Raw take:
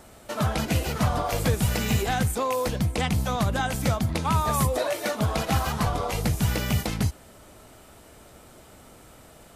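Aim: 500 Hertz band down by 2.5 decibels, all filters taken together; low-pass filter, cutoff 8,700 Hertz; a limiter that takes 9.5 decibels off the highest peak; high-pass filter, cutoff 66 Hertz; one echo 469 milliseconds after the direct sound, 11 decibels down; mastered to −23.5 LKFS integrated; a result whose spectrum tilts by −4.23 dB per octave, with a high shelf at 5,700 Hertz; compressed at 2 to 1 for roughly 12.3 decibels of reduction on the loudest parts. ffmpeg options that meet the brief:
ffmpeg -i in.wav -af "highpass=66,lowpass=8700,equalizer=frequency=500:width_type=o:gain=-3,highshelf=frequency=5700:gain=8,acompressor=threshold=-43dB:ratio=2,alimiter=level_in=6dB:limit=-24dB:level=0:latency=1,volume=-6dB,aecho=1:1:469:0.282,volume=17dB" out.wav

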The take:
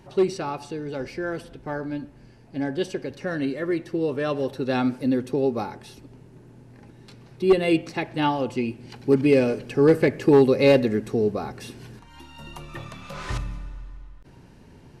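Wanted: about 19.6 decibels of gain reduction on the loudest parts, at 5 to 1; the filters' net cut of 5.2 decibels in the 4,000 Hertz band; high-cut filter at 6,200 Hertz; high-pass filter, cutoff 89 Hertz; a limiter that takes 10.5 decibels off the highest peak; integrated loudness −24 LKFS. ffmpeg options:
ffmpeg -i in.wav -af "highpass=89,lowpass=6200,equalizer=frequency=4000:width_type=o:gain=-6.5,acompressor=threshold=-35dB:ratio=5,volume=20dB,alimiter=limit=-14.5dB:level=0:latency=1" out.wav

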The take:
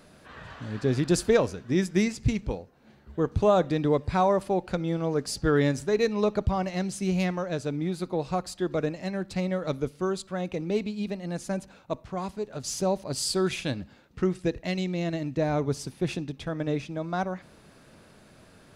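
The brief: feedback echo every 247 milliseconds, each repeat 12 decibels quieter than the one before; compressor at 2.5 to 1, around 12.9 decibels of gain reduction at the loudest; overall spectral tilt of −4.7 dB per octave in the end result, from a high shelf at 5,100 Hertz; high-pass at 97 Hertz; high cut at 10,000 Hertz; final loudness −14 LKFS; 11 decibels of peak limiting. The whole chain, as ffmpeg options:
ffmpeg -i in.wav -af "highpass=97,lowpass=10000,highshelf=frequency=5100:gain=8.5,acompressor=threshold=-37dB:ratio=2.5,alimiter=level_in=9.5dB:limit=-24dB:level=0:latency=1,volume=-9.5dB,aecho=1:1:247|494|741:0.251|0.0628|0.0157,volume=28.5dB" out.wav

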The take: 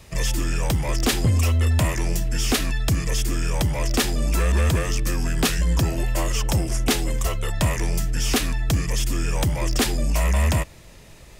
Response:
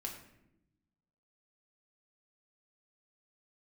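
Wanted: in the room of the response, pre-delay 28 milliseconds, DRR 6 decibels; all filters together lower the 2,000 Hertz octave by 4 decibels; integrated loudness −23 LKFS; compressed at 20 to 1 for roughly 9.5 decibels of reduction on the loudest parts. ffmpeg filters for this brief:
-filter_complex "[0:a]equalizer=frequency=2000:width_type=o:gain=-5,acompressor=threshold=-25dB:ratio=20,asplit=2[link_01][link_02];[1:a]atrim=start_sample=2205,adelay=28[link_03];[link_02][link_03]afir=irnorm=-1:irlink=0,volume=-5dB[link_04];[link_01][link_04]amix=inputs=2:normalize=0,volume=6.5dB"

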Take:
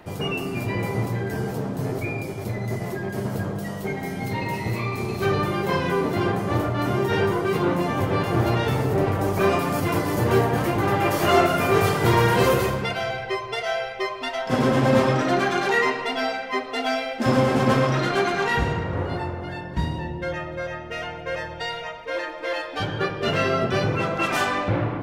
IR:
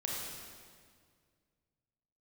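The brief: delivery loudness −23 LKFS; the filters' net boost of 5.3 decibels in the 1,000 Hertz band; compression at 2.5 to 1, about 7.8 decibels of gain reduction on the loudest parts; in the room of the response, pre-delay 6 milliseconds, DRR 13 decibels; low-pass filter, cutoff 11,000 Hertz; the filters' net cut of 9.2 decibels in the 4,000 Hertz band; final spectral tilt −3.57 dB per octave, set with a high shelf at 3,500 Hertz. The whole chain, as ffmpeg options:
-filter_complex "[0:a]lowpass=11000,equalizer=frequency=1000:width_type=o:gain=8,highshelf=frequency=3500:gain=-8.5,equalizer=frequency=4000:width_type=o:gain=-8.5,acompressor=threshold=-22dB:ratio=2.5,asplit=2[link_01][link_02];[1:a]atrim=start_sample=2205,adelay=6[link_03];[link_02][link_03]afir=irnorm=-1:irlink=0,volume=-16dB[link_04];[link_01][link_04]amix=inputs=2:normalize=0,volume=2.5dB"

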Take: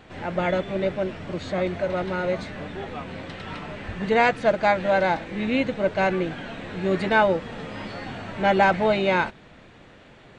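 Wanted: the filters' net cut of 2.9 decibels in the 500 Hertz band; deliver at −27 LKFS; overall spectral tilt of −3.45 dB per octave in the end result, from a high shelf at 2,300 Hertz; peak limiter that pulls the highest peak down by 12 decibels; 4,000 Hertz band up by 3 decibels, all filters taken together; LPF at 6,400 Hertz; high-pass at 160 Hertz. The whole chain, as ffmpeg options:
ffmpeg -i in.wav -af "highpass=160,lowpass=6400,equalizer=frequency=500:width_type=o:gain=-3.5,highshelf=frequency=2300:gain=-3,equalizer=frequency=4000:width_type=o:gain=7,volume=3dB,alimiter=limit=-14.5dB:level=0:latency=1" out.wav

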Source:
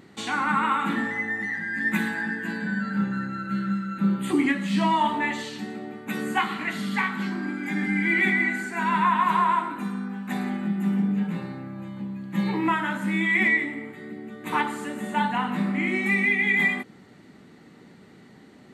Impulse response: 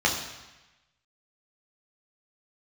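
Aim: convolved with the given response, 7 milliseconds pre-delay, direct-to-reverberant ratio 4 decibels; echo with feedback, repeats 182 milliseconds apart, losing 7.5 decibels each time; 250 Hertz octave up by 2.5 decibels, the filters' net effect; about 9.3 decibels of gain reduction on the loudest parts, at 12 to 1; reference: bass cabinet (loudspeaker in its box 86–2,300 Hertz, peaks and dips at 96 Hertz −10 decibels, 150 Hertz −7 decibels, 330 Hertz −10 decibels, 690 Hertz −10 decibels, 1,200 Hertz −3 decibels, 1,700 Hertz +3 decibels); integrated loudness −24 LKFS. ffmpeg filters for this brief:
-filter_complex "[0:a]equalizer=frequency=250:width_type=o:gain=7,acompressor=threshold=-22dB:ratio=12,aecho=1:1:182|364|546|728|910:0.422|0.177|0.0744|0.0312|0.0131,asplit=2[link_01][link_02];[1:a]atrim=start_sample=2205,adelay=7[link_03];[link_02][link_03]afir=irnorm=-1:irlink=0,volume=-18.5dB[link_04];[link_01][link_04]amix=inputs=2:normalize=0,highpass=frequency=86:width=0.5412,highpass=frequency=86:width=1.3066,equalizer=frequency=96:width_type=q:width=4:gain=-10,equalizer=frequency=150:width_type=q:width=4:gain=-7,equalizer=frequency=330:width_type=q:width=4:gain=-10,equalizer=frequency=690:width_type=q:width=4:gain=-10,equalizer=frequency=1200:width_type=q:width=4:gain=-3,equalizer=frequency=1700:width_type=q:width=4:gain=3,lowpass=frequency=2300:width=0.5412,lowpass=frequency=2300:width=1.3066,volume=3dB"

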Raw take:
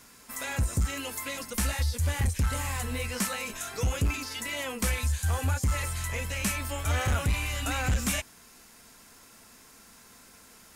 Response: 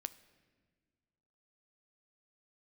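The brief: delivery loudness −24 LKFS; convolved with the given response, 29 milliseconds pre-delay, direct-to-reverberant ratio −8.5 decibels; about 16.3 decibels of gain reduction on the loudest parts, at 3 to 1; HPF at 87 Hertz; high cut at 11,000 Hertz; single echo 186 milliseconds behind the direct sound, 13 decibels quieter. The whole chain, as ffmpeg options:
-filter_complex "[0:a]highpass=87,lowpass=11000,acompressor=threshold=-48dB:ratio=3,aecho=1:1:186:0.224,asplit=2[link_01][link_02];[1:a]atrim=start_sample=2205,adelay=29[link_03];[link_02][link_03]afir=irnorm=-1:irlink=0,volume=11dB[link_04];[link_01][link_04]amix=inputs=2:normalize=0,volume=13dB"

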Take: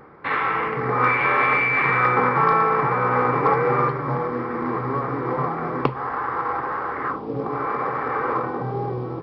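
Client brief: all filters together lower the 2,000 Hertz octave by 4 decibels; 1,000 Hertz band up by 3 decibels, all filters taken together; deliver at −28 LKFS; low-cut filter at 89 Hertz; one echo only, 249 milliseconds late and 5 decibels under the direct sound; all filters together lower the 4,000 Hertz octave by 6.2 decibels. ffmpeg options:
ffmpeg -i in.wav -af "highpass=89,equalizer=frequency=1000:width_type=o:gain=5.5,equalizer=frequency=2000:width_type=o:gain=-5,equalizer=frequency=4000:width_type=o:gain=-7,aecho=1:1:249:0.562,volume=-9dB" out.wav

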